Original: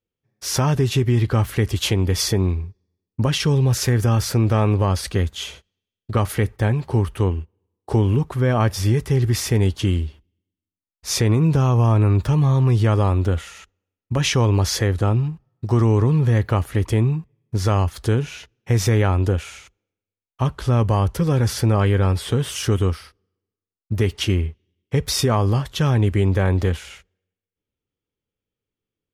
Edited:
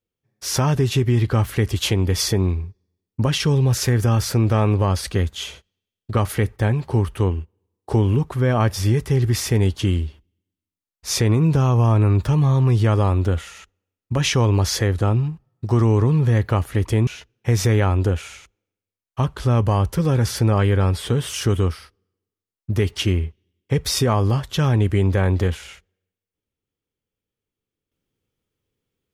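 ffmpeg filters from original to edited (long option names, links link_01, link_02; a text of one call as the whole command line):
ffmpeg -i in.wav -filter_complex "[0:a]asplit=2[link_01][link_02];[link_01]atrim=end=17.072[link_03];[link_02]atrim=start=18.288[link_04];[link_03][link_04]acrossfade=duration=0.004:curve1=hsin:curve2=hsin" out.wav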